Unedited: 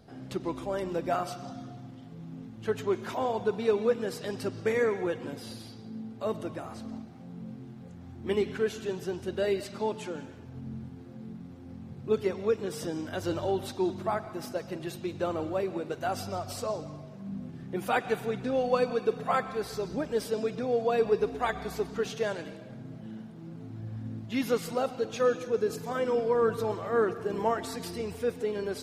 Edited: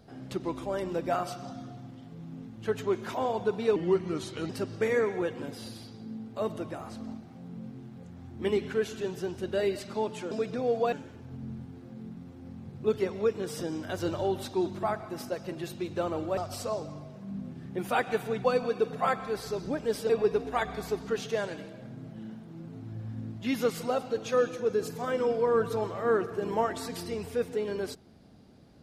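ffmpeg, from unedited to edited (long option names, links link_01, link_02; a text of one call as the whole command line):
ffmpeg -i in.wav -filter_complex "[0:a]asplit=8[link_01][link_02][link_03][link_04][link_05][link_06][link_07][link_08];[link_01]atrim=end=3.764[link_09];[link_02]atrim=start=3.76:end=4.34,asetpts=PTS-STARTPTS,asetrate=34839,aresample=44100,atrim=end_sample=32377,asetpts=PTS-STARTPTS[link_10];[link_03]atrim=start=4.336:end=10.162[link_11];[link_04]atrim=start=20.358:end=20.972[link_12];[link_05]atrim=start=10.158:end=15.612[link_13];[link_06]atrim=start=16.348:end=18.422[link_14];[link_07]atrim=start=18.708:end=20.362[link_15];[link_08]atrim=start=20.968[link_16];[link_09][link_10]acrossfade=duration=0.004:curve1=hsin:curve2=hsin[link_17];[link_17][link_11]acrossfade=duration=0.004:curve1=hsin:curve2=hsin[link_18];[link_18][link_12]acrossfade=duration=0.004:curve1=hsin:curve2=hsin[link_19];[link_19][link_13]acrossfade=duration=0.004:curve1=hsin:curve2=hsin[link_20];[link_20][link_14]acrossfade=duration=0.004:curve1=hsin:curve2=hsin[link_21];[link_21][link_15]acrossfade=duration=0.004:curve1=hsin:curve2=hsin[link_22];[link_22][link_16]acrossfade=duration=0.004:curve1=hsin:curve2=hsin" out.wav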